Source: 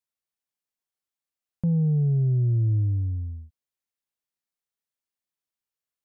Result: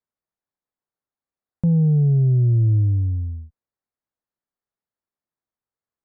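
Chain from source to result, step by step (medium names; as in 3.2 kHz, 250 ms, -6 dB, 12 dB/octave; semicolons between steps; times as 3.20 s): local Wiener filter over 15 samples; sliding maximum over 3 samples; trim +5.5 dB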